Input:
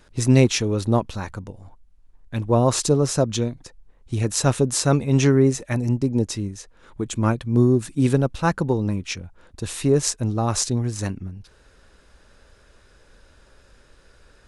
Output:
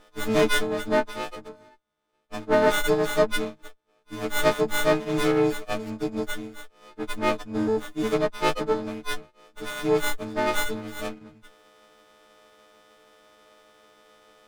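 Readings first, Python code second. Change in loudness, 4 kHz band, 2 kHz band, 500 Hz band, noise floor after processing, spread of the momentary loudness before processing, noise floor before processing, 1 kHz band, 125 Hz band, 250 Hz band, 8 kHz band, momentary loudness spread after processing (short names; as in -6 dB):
-4.0 dB, -1.5 dB, +5.0 dB, -1.0 dB, -67 dBFS, 15 LU, -55 dBFS, +0.5 dB, -17.0 dB, -7.0 dB, -11.5 dB, 14 LU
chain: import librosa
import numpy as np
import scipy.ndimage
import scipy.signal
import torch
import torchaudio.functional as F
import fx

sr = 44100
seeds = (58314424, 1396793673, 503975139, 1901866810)

y = fx.freq_snap(x, sr, grid_st=6)
y = fx.bandpass_edges(y, sr, low_hz=370.0, high_hz=4500.0)
y = fx.running_max(y, sr, window=17)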